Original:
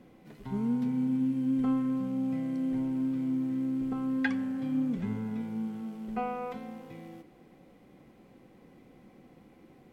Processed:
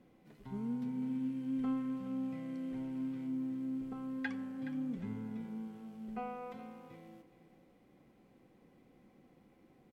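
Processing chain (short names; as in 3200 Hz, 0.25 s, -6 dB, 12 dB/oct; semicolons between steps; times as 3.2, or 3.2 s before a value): 1.02–3.27 bell 2400 Hz +4 dB 1.9 oct; echo 0.421 s -13 dB; gain -8.5 dB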